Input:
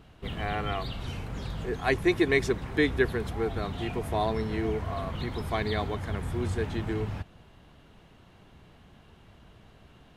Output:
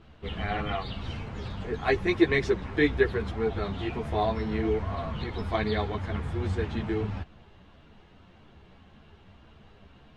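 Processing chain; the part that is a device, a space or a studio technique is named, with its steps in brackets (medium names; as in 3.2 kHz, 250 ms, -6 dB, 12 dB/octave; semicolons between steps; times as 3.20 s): string-machine ensemble chorus (three-phase chorus; low-pass 5.1 kHz 12 dB/octave); trim +3.5 dB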